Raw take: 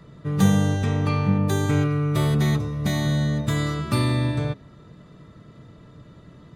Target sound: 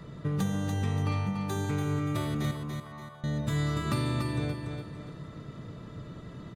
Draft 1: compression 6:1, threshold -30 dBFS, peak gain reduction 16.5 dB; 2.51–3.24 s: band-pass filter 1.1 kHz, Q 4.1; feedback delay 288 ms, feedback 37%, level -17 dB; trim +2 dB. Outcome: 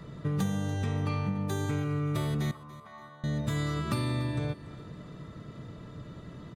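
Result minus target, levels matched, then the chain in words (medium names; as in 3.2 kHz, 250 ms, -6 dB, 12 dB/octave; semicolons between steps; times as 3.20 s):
echo-to-direct -11.5 dB
compression 6:1, threshold -30 dBFS, peak gain reduction 16.5 dB; 2.51–3.24 s: band-pass filter 1.1 kHz, Q 4.1; feedback delay 288 ms, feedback 37%, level -5.5 dB; trim +2 dB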